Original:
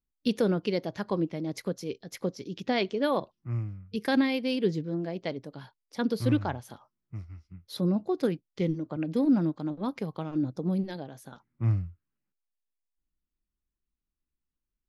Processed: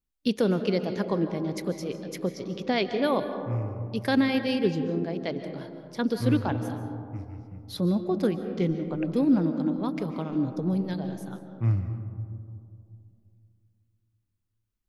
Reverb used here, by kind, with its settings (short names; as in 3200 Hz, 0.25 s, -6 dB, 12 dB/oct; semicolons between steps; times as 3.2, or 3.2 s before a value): digital reverb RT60 2.5 s, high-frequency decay 0.25×, pre-delay 0.105 s, DRR 8 dB; gain +1.5 dB